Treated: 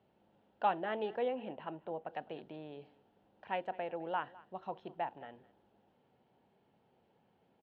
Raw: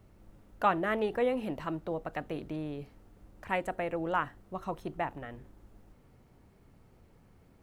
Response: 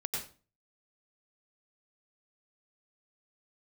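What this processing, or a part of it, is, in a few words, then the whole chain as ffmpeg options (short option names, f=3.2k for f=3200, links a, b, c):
kitchen radio: -filter_complex "[0:a]highpass=230,equalizer=f=300:t=q:w=4:g=-6,equalizer=f=820:t=q:w=4:g=6,equalizer=f=1.2k:t=q:w=4:g=-8,equalizer=f=2.1k:t=q:w=4:g=-6,equalizer=f=3.1k:t=q:w=4:g=5,lowpass=f=4k:w=0.5412,lowpass=f=4k:w=1.3066,asettb=1/sr,asplit=3[a][b][c];[a]atrim=end=1.284[d];[b]atrim=start=1.28:end=2.09,asetpts=PTS-STARTPTS,afade=t=in:d=0.004:c=qsin,afade=t=out:st=0.806:d=0.004:c=qsin,lowpass=f=3.2k:w=0.5412,lowpass=f=3.2k:w=1.3066[e];[c]atrim=start=2.086[f];[d][e]acrossfade=d=0.004:c1=hsin:c2=qsin[g];[g][f]acrossfade=d=0.004:c1=qsin:c2=hsin,highshelf=f=6.6k:g=-5,aecho=1:1:208:0.0891,volume=-5.5dB"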